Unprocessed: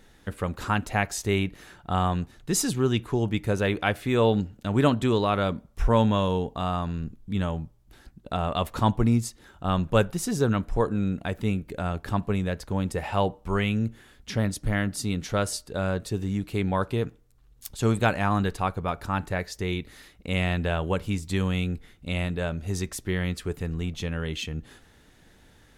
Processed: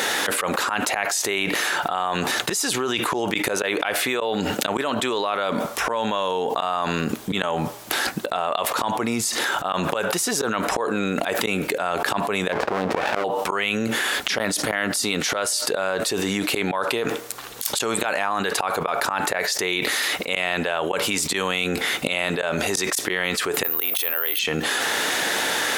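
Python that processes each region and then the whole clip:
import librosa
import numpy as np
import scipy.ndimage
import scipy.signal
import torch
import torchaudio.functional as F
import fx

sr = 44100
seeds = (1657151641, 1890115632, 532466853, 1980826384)

y = fx.chain(x, sr, fx.lowpass(hz=1500.0, slope=12),
    fx.running_max(window=33), at=(12.52, 13.24))
y = fx.chain(y, sr, fx.highpass(hz=420.0, slope=12),
    fx.resample_bad(factor=3, down='filtered', up='zero_stuff'), at=(23.63, 24.39))
y = scipy.signal.sosfilt(scipy.signal.butter(2, 570.0, 'highpass', fs=sr, output='sos'), y)
y = fx.auto_swell(y, sr, attack_ms=120.0)
y = fx.env_flatten(y, sr, amount_pct=100)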